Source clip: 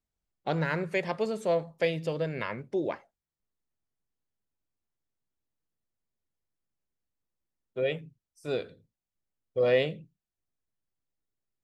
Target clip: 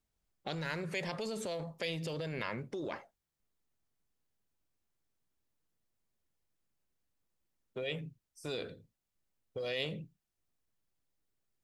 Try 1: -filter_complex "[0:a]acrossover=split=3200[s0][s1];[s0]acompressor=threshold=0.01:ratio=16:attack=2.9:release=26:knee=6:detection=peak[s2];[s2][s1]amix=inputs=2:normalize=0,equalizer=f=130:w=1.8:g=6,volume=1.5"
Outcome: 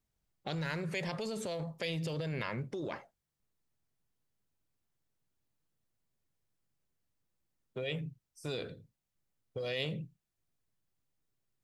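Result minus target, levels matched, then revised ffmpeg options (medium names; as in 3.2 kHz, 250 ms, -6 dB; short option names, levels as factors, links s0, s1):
125 Hz band +3.0 dB
-filter_complex "[0:a]acrossover=split=3200[s0][s1];[s0]acompressor=threshold=0.01:ratio=16:attack=2.9:release=26:knee=6:detection=peak[s2];[s2][s1]amix=inputs=2:normalize=0,volume=1.5"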